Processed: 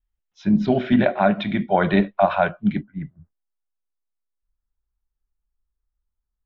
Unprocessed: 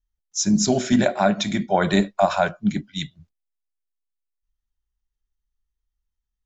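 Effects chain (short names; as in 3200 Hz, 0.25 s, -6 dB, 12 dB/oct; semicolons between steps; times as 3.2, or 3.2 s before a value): steep low-pass 3300 Hz 36 dB/oct, from 2.82 s 1600 Hz; gain +1 dB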